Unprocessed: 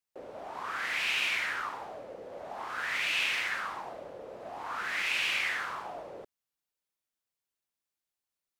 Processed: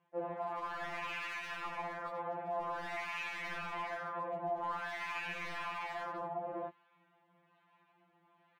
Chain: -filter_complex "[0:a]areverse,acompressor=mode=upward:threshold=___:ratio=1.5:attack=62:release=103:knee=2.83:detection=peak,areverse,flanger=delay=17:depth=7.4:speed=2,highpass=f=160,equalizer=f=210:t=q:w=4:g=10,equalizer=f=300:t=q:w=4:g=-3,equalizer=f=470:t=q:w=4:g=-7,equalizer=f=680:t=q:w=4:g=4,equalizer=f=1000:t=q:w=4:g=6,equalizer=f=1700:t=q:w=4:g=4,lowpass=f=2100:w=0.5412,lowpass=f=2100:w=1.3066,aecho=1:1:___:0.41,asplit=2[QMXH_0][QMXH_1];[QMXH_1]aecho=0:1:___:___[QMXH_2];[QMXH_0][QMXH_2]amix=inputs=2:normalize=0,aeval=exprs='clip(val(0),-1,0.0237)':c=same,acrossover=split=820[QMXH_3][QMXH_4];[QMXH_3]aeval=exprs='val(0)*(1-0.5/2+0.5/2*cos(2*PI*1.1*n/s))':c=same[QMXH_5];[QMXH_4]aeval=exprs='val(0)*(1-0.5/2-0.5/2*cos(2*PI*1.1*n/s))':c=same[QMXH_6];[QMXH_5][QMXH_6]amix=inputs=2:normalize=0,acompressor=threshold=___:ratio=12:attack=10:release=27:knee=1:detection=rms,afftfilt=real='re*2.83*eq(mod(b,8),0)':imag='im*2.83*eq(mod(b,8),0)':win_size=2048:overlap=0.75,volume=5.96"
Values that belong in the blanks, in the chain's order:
0.0141, 6.1, 410, 0.562, 0.00251